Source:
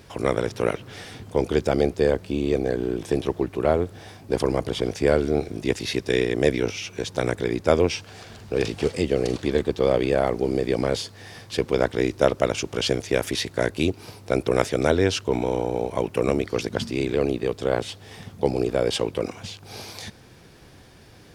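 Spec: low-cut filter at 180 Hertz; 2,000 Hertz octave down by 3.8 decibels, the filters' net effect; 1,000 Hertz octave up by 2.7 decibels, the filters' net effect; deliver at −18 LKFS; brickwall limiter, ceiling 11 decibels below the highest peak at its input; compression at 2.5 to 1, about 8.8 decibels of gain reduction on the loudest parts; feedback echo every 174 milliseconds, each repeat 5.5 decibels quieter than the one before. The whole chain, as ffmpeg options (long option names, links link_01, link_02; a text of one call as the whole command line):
ffmpeg -i in.wav -af "highpass=180,equalizer=frequency=1000:width_type=o:gain=5.5,equalizer=frequency=2000:width_type=o:gain=-7,acompressor=threshold=-26dB:ratio=2.5,alimiter=limit=-21.5dB:level=0:latency=1,aecho=1:1:174|348|522|696|870|1044|1218:0.531|0.281|0.149|0.079|0.0419|0.0222|0.0118,volume=15dB" out.wav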